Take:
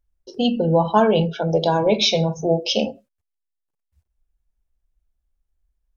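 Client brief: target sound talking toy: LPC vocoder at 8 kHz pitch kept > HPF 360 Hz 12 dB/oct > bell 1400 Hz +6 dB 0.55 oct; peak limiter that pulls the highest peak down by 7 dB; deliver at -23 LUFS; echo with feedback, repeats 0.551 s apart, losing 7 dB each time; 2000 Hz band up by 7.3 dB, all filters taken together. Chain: bell 2000 Hz +6.5 dB; limiter -9.5 dBFS; feedback echo 0.551 s, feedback 45%, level -7 dB; LPC vocoder at 8 kHz pitch kept; HPF 360 Hz 12 dB/oct; bell 1400 Hz +6 dB 0.55 oct; gain -0.5 dB

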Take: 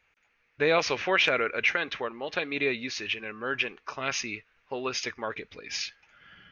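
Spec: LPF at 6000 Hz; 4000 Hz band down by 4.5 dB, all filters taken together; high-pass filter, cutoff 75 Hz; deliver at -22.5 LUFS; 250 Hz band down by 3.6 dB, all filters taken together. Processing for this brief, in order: HPF 75 Hz; LPF 6000 Hz; bell 250 Hz -5 dB; bell 4000 Hz -5.5 dB; gain +8 dB

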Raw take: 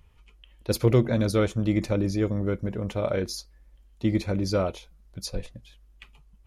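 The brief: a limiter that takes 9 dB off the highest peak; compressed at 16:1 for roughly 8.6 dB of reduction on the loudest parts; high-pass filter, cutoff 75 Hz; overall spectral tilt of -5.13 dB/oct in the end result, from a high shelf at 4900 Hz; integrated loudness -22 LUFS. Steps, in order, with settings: HPF 75 Hz; high shelf 4900 Hz +6.5 dB; compressor 16:1, threshold -23 dBFS; gain +12 dB; limiter -11 dBFS

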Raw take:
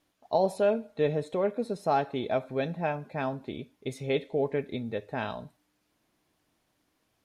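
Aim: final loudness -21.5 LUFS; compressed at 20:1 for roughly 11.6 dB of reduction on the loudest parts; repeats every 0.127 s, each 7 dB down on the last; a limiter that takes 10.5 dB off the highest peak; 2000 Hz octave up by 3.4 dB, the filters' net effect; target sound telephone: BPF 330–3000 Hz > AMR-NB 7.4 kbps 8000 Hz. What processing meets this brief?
bell 2000 Hz +5.5 dB; compressor 20:1, threshold -31 dBFS; limiter -29.5 dBFS; BPF 330–3000 Hz; feedback echo 0.127 s, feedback 45%, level -7 dB; gain +21 dB; AMR-NB 7.4 kbps 8000 Hz

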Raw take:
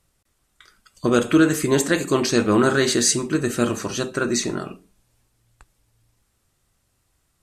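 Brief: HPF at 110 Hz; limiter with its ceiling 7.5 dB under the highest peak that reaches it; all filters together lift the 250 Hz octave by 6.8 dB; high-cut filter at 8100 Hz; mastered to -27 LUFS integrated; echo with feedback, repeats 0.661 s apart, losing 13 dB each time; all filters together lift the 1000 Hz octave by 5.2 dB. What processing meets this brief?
HPF 110 Hz; LPF 8100 Hz; bell 250 Hz +8.5 dB; bell 1000 Hz +6.5 dB; limiter -7.5 dBFS; feedback echo 0.661 s, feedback 22%, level -13 dB; gain -8.5 dB

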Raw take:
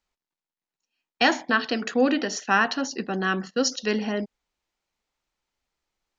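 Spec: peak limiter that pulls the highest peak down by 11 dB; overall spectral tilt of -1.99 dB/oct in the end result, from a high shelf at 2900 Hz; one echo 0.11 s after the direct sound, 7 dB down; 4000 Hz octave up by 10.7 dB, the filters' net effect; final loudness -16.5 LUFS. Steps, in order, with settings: high shelf 2900 Hz +7.5 dB; bell 4000 Hz +8 dB; limiter -10 dBFS; echo 0.11 s -7 dB; gain +5.5 dB

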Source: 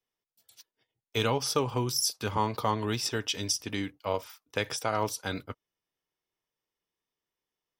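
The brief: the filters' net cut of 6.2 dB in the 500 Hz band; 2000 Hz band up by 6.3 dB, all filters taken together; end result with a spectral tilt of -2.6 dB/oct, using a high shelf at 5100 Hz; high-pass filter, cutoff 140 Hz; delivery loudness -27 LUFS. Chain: HPF 140 Hz; bell 500 Hz -8 dB; bell 2000 Hz +7.5 dB; high shelf 5100 Hz +6.5 dB; gain +1.5 dB

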